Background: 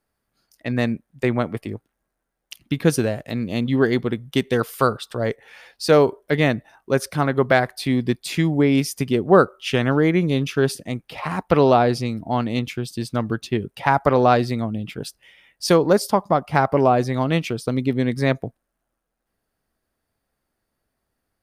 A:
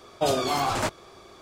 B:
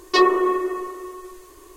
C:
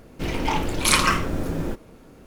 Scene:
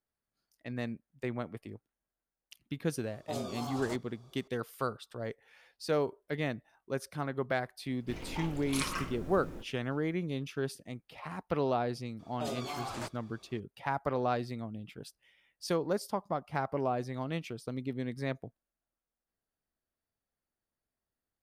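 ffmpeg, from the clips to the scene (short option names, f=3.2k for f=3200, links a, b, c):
-filter_complex "[1:a]asplit=2[a][b];[0:a]volume=-15.5dB[c];[a]equalizer=f=2k:w=1.5:g=-10.5,atrim=end=1.41,asetpts=PTS-STARTPTS,volume=-14dB,afade=t=in:d=0.004:c=hsin,afade=t=out:st=1.406:d=0.004:c=hsin,adelay=3070[d];[3:a]atrim=end=2.26,asetpts=PTS-STARTPTS,volume=-17dB,afade=t=in:d=0.004:c=hsin,afade=t=out:st=2.256:d=0.004:c=hsin,adelay=7880[e];[b]atrim=end=1.41,asetpts=PTS-STARTPTS,volume=-14dB,afade=t=in:d=0.004:c=hsin,afade=t=out:st=1.406:d=0.004:c=hsin,adelay=12190[f];[c][d][e][f]amix=inputs=4:normalize=0"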